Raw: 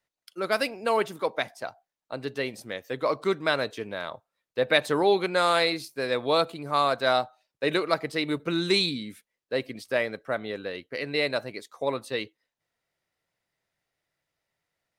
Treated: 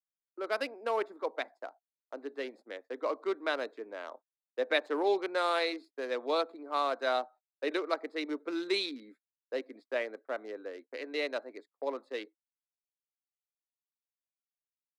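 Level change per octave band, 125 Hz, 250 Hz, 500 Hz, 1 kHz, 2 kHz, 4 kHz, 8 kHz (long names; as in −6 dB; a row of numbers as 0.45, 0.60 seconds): below −30 dB, −8.0 dB, −6.5 dB, −7.0 dB, −8.0 dB, −10.0 dB, below −10 dB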